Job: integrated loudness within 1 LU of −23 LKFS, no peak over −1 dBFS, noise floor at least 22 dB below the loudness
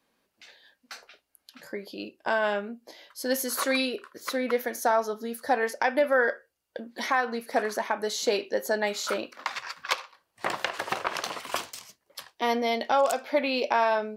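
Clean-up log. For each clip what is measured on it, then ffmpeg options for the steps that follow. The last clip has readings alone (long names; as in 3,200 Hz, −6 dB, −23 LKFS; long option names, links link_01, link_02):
integrated loudness −28.0 LKFS; sample peak −7.5 dBFS; target loudness −23.0 LKFS
→ -af "volume=5dB"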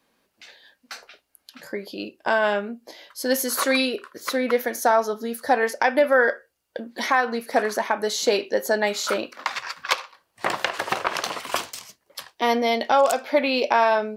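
integrated loudness −23.0 LKFS; sample peak −2.5 dBFS; background noise floor −72 dBFS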